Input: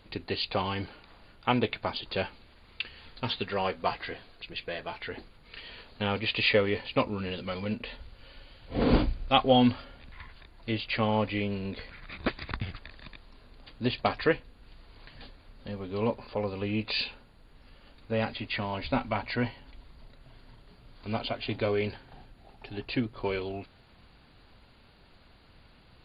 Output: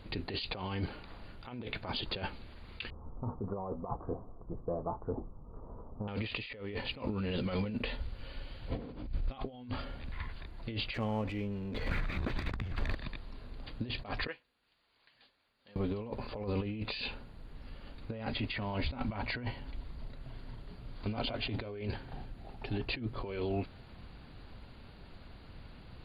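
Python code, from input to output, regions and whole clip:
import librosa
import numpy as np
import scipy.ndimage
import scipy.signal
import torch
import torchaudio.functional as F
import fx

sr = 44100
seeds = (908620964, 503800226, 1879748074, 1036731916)

y = fx.chain(x, sr, fx.steep_lowpass(hz=1200.0, slope=72),
    fx.peak_eq(hz=560.0, db=-2.0, octaves=2.3), at=(2.9, 6.08))
y = fx.chain(y, sr, fx.high_shelf(hz=4200.0, db=-10.0),
    fx.over_compress(threshold_db=-37.0, ratio=-1.0),
    fx.leveller(passes=2), at=(10.94, 12.95))
y = fx.chain(y, sr, fx.lowpass(hz=1700.0, slope=6),
    fx.differentiator(), at=(14.27, 15.76))
y = fx.high_shelf(y, sr, hz=3200.0, db=-3.0)
y = fx.over_compress(y, sr, threshold_db=-37.0, ratio=-1.0)
y = fx.low_shelf(y, sr, hz=350.0, db=6.0)
y = y * 10.0 ** (-3.5 / 20.0)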